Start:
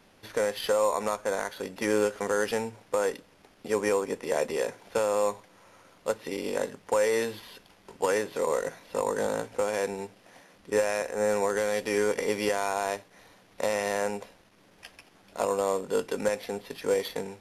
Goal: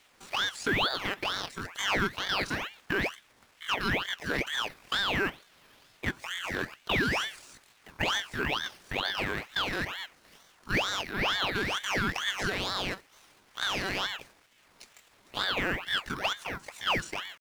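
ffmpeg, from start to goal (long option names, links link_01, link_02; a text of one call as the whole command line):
ffmpeg -i in.wav -filter_complex "[0:a]asetrate=83250,aresample=44100,atempo=0.529732,acrossover=split=8100[link_01][link_02];[link_02]acompressor=threshold=-52dB:ratio=4:attack=1:release=60[link_03];[link_01][link_03]amix=inputs=2:normalize=0,aeval=exprs='val(0)*sin(2*PI*1600*n/s+1600*0.65/2.2*sin(2*PI*2.2*n/s))':channel_layout=same" out.wav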